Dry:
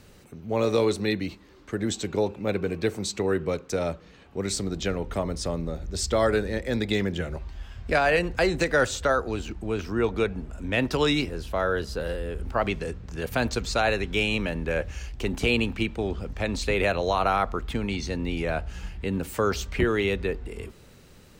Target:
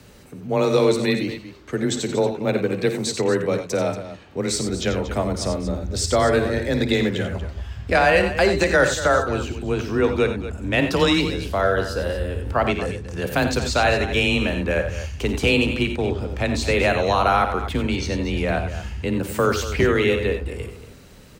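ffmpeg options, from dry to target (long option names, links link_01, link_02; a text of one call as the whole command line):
ffmpeg -i in.wav -af "afreqshift=20,aecho=1:1:55|86|98|234:0.237|0.299|0.224|0.224,volume=4.5dB" out.wav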